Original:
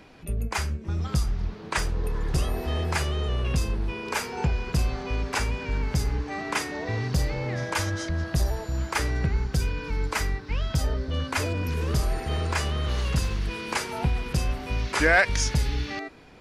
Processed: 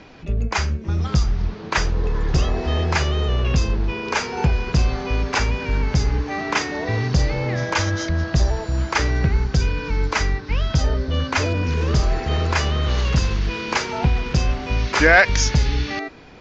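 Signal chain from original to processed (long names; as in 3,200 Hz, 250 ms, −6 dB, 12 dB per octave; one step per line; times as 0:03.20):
Butterworth low-pass 6,900 Hz 72 dB per octave
level +6.5 dB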